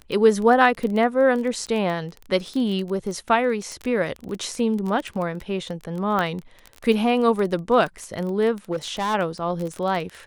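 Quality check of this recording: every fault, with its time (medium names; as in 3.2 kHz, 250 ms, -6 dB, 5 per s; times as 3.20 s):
crackle 22 per s -26 dBFS
3.72 s: pop -21 dBFS
6.19 s: pop -12 dBFS
8.71–9.15 s: clipped -20.5 dBFS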